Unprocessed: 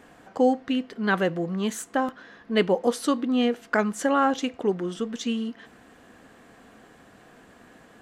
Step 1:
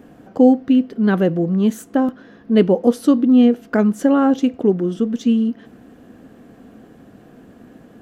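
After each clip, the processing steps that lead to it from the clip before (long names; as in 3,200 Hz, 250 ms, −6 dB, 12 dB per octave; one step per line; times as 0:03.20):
graphic EQ with 10 bands 125 Hz +3 dB, 250 Hz +5 dB, 1,000 Hz −7 dB, 2,000 Hz −8 dB, 4,000 Hz −6 dB, 8,000 Hz −10 dB
level +7 dB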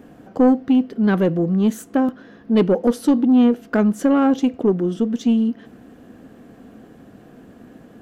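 soft clipping −7.5 dBFS, distortion −18 dB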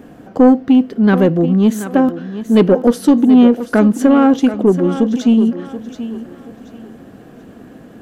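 feedback echo with a high-pass in the loop 731 ms, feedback 31%, high-pass 180 Hz, level −11.5 dB
level +5.5 dB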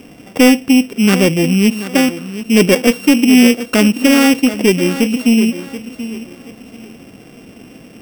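samples sorted by size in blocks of 16 samples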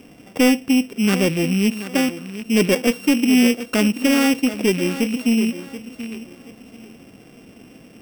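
loose part that buzzes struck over −25 dBFS, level −19 dBFS
level −6.5 dB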